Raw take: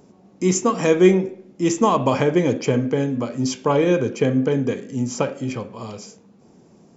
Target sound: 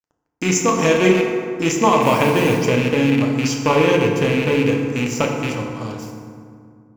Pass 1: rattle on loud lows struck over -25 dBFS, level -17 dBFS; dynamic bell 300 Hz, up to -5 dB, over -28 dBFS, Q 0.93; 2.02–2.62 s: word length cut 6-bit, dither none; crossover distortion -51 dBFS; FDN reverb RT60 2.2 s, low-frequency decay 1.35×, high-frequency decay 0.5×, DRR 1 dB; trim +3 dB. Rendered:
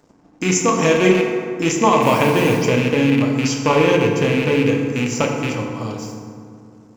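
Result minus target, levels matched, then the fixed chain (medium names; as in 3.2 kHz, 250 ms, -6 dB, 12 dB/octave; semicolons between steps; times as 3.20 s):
crossover distortion: distortion -9 dB
rattle on loud lows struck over -25 dBFS, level -17 dBFS; dynamic bell 300 Hz, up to -5 dB, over -28 dBFS, Q 0.93; 2.02–2.62 s: word length cut 6-bit, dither none; crossover distortion -40.5 dBFS; FDN reverb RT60 2.2 s, low-frequency decay 1.35×, high-frequency decay 0.5×, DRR 1 dB; trim +3 dB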